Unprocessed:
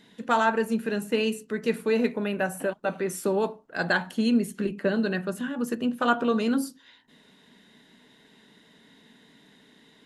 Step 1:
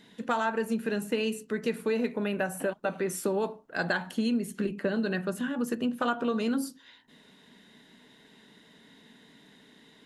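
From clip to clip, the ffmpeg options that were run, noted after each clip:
-af "acompressor=threshold=0.0562:ratio=4"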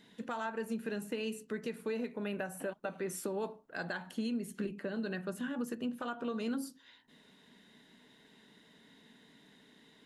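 -af "alimiter=limit=0.0794:level=0:latency=1:release=397,volume=0.562"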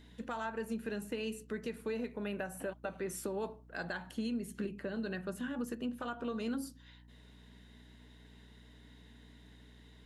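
-af "aeval=exprs='val(0)+0.00158*(sin(2*PI*60*n/s)+sin(2*PI*2*60*n/s)/2+sin(2*PI*3*60*n/s)/3+sin(2*PI*4*60*n/s)/4+sin(2*PI*5*60*n/s)/5)':c=same,volume=0.891"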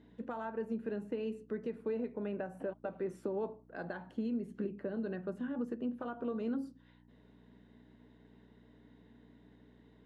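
-af "bandpass=f=370:t=q:w=0.6:csg=0,volume=1.26"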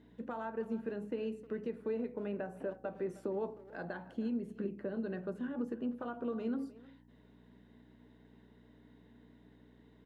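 -filter_complex "[0:a]bandreject=f=69.84:t=h:w=4,bandreject=f=139.68:t=h:w=4,bandreject=f=209.52:t=h:w=4,bandreject=f=279.36:t=h:w=4,bandreject=f=349.2:t=h:w=4,bandreject=f=419.04:t=h:w=4,bandreject=f=488.88:t=h:w=4,bandreject=f=558.72:t=h:w=4,bandreject=f=628.56:t=h:w=4,bandreject=f=698.4:t=h:w=4,bandreject=f=768.24:t=h:w=4,bandreject=f=838.08:t=h:w=4,asplit=2[s0][s1];[s1]adelay=310,highpass=300,lowpass=3400,asoftclip=type=hard:threshold=0.0188,volume=0.141[s2];[s0][s2]amix=inputs=2:normalize=0"

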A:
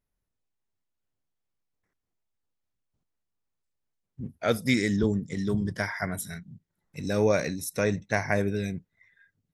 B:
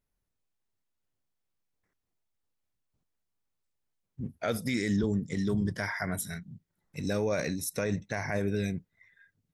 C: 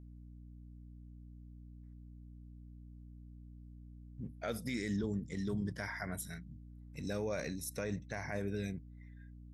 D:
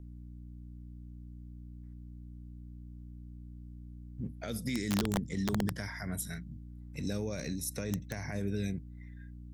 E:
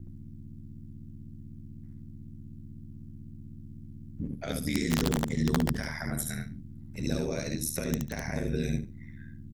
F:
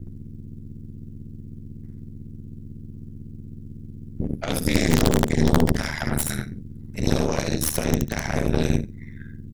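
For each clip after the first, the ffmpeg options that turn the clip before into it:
-af "alimiter=limit=0.106:level=0:latency=1:release=49"
-af "aeval=exprs='val(0)+0.00708*(sin(2*PI*60*n/s)+sin(2*PI*2*60*n/s)/2+sin(2*PI*3*60*n/s)/3+sin(2*PI*4*60*n/s)/4+sin(2*PI*5*60*n/s)/5)':c=same,volume=0.398"
-filter_complex "[0:a]acrossover=split=330|3000[s0][s1][s2];[s1]acompressor=threshold=0.00398:ratio=6[s3];[s0][s3][s2]amix=inputs=3:normalize=0,aeval=exprs='(mod(26.6*val(0)+1,2)-1)/26.6':c=same,volume=1.88"
-af "aecho=1:1:72|144|216:0.631|0.107|0.0182,aeval=exprs='val(0)*sin(2*PI*38*n/s)':c=same,volume=2.11"
-af "aeval=exprs='0.2*(cos(1*acos(clip(val(0)/0.2,-1,1)))-cos(1*PI/2))+0.0562*(cos(4*acos(clip(val(0)/0.2,-1,1)))-cos(4*PI/2))+0.0112*(cos(8*acos(clip(val(0)/0.2,-1,1)))-cos(8*PI/2))':c=same,volume=2.11"

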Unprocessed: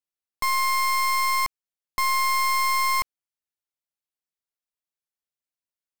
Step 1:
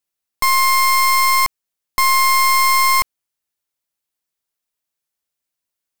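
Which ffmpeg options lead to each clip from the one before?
-af "highshelf=f=6700:g=4,volume=2.51"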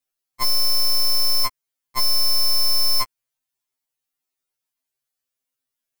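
-af "afftfilt=real='re*2.45*eq(mod(b,6),0)':imag='im*2.45*eq(mod(b,6),0)':win_size=2048:overlap=0.75"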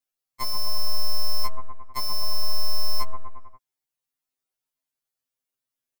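-filter_complex "[0:a]acrossover=split=1400[s0][s1];[s0]aecho=1:1:130|247|352.3|447.1|532.4:0.631|0.398|0.251|0.158|0.1[s2];[s1]alimiter=limit=0.1:level=0:latency=1:release=382[s3];[s2][s3]amix=inputs=2:normalize=0,volume=0.631"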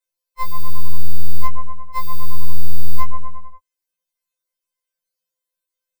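-af "afftfilt=real='re*2.83*eq(mod(b,8),0)':imag='im*2.83*eq(mod(b,8),0)':win_size=2048:overlap=0.75,volume=1.5"

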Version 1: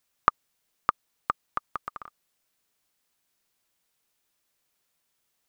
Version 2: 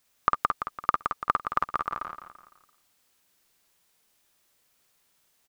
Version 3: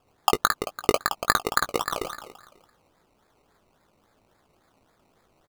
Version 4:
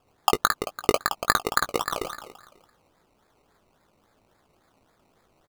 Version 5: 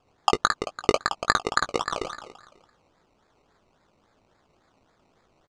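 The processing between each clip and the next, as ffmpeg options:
-filter_complex "[0:a]asplit=2[s0][s1];[s1]aecho=0:1:169|338|507|676:0.316|0.13|0.0532|0.0218[s2];[s0][s2]amix=inputs=2:normalize=0,alimiter=limit=0.282:level=0:latency=1:release=28,asplit=2[s3][s4];[s4]aecho=0:1:52|63:0.668|0.168[s5];[s3][s5]amix=inputs=2:normalize=0,volume=1.78"
-filter_complex "[0:a]bandreject=f=1000:w=9.3,acrusher=samples=21:mix=1:aa=0.000001:lfo=1:lforange=12.6:lforate=3.6,asplit=2[s0][s1];[s1]adelay=19,volume=0.282[s2];[s0][s2]amix=inputs=2:normalize=0,volume=1.5"
-af anull
-af "lowpass=f=7300:w=0.5412,lowpass=f=7300:w=1.3066"

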